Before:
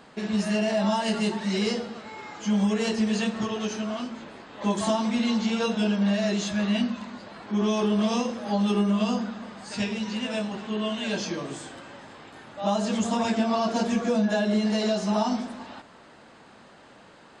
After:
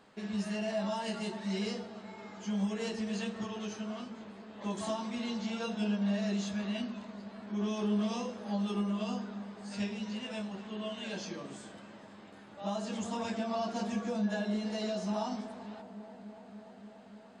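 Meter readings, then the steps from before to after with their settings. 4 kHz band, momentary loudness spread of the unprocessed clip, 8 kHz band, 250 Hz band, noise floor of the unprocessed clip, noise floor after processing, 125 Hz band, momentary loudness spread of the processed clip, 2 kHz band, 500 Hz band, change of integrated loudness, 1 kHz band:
−10.0 dB, 15 LU, −10.5 dB, −9.0 dB, −51 dBFS, −53 dBFS, −8.0 dB, 16 LU, −10.0 dB, −10.0 dB, −9.5 dB, −10.0 dB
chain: flanger 0.5 Hz, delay 9.6 ms, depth 1.4 ms, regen +61%
bucket-brigade delay 290 ms, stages 2,048, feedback 84%, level −16.5 dB
level −6 dB

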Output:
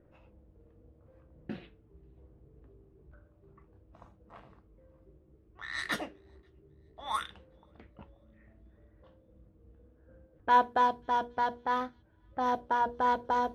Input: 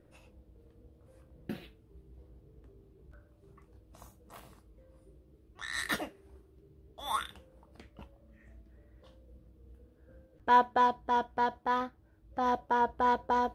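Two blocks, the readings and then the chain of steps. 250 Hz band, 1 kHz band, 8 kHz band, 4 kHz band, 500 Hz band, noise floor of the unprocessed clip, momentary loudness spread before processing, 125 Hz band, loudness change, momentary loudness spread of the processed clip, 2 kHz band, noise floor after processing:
−1.5 dB, 0.0 dB, −4.5 dB, −1.0 dB, −1.0 dB, −63 dBFS, 19 LU, −1.5 dB, 0.0 dB, 19 LU, 0.0 dB, −64 dBFS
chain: on a send: delay with a high-pass on its return 538 ms, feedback 50%, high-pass 3,700 Hz, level −24 dB
on the sum: low-pass that shuts in the quiet parts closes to 1,800 Hz, open at −26 dBFS
mains-hum notches 60/120/180/240/300/360/420/480 Hz

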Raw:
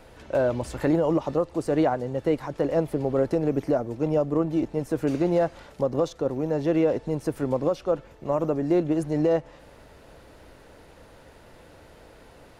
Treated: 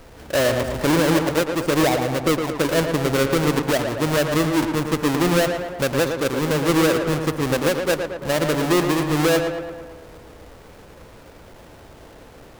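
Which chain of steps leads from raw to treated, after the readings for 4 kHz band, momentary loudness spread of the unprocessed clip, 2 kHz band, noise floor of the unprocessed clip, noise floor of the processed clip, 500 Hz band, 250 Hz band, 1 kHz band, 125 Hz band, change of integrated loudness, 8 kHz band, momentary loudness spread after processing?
+20.0 dB, 5 LU, +16.0 dB, −51 dBFS, −45 dBFS, +3.5 dB, +4.5 dB, +8.0 dB, +6.0 dB, +5.0 dB, can't be measured, 5 LU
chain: each half-wave held at its own peak
on a send: tape delay 113 ms, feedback 67%, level −4.5 dB, low-pass 2,700 Hz

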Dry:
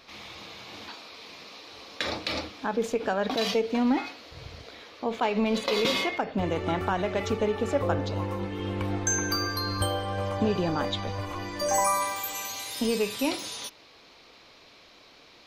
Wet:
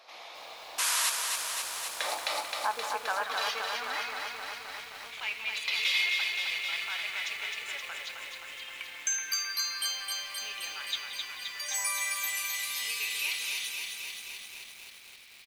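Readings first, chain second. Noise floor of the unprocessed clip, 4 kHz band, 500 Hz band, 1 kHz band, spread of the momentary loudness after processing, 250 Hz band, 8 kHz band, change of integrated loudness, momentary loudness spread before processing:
−54 dBFS, +2.0 dB, −17.0 dB, −6.0 dB, 14 LU, below −30 dB, +2.0 dB, −3.5 dB, 17 LU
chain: parametric band 11,000 Hz +4.5 dB 0.68 octaves
far-end echo of a speakerphone 180 ms, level −9 dB
sound drawn into the spectrogram noise, 0:00.78–0:01.10, 920–12,000 Hz −24 dBFS
high-pass filter sweep 670 Hz → 2,300 Hz, 0:01.74–0:05.06
feedback echo at a low word length 262 ms, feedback 80%, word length 8 bits, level −4 dB
level −4.5 dB

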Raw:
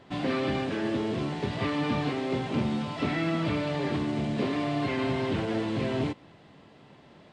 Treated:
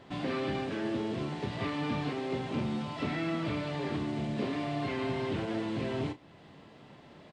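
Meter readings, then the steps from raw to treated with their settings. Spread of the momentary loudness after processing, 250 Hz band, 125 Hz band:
4 LU, −4.5 dB, −4.5 dB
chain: double-tracking delay 33 ms −11.5 dB
in parallel at 0 dB: downward compressor, threshold −45 dBFS, peak gain reduction 20 dB
on the sum: level −6 dB

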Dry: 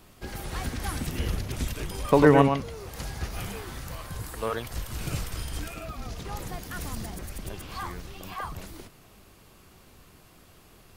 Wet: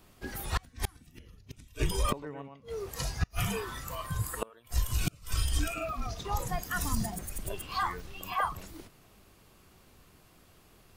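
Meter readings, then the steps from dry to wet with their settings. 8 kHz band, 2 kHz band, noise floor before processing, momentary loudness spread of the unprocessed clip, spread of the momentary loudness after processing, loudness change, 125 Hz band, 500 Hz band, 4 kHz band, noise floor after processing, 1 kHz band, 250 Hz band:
+1.5 dB, −3.5 dB, −55 dBFS, 17 LU, 11 LU, −5.0 dB, −4.0 dB, −12.0 dB, 0.0 dB, −60 dBFS, −3.5 dB, −11.0 dB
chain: noise reduction from a noise print of the clip's start 11 dB
gate with flip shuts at −22 dBFS, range −31 dB
level +6 dB

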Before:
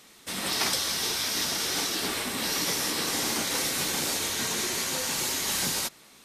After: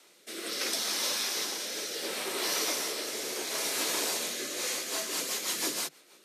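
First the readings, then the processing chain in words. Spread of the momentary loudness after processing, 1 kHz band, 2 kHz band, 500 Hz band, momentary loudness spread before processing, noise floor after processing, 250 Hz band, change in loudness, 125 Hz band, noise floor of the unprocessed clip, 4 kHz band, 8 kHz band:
5 LU, −5.0 dB, −4.5 dB, −1.0 dB, 3 LU, −60 dBFS, −6.5 dB, −4.0 dB, −17.0 dB, −54 dBFS, −4.0 dB, −4.0 dB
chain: frequency shifter +140 Hz
rotating-speaker cabinet horn 0.7 Hz, later 6.3 Hz, at 0:04.30
level −1.5 dB

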